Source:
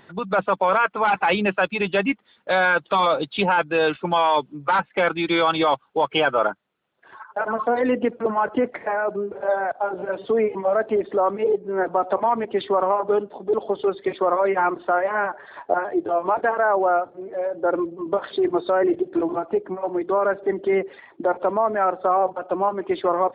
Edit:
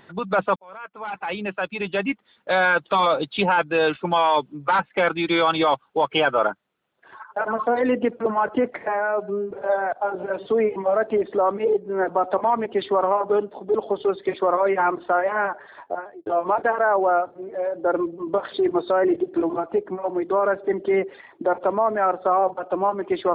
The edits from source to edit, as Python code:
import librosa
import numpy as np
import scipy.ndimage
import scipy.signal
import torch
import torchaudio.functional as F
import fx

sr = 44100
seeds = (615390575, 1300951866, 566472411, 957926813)

y = fx.edit(x, sr, fx.fade_in_span(start_s=0.56, length_s=2.05),
    fx.stretch_span(start_s=8.88, length_s=0.42, factor=1.5),
    fx.fade_out_span(start_s=15.31, length_s=0.74), tone=tone)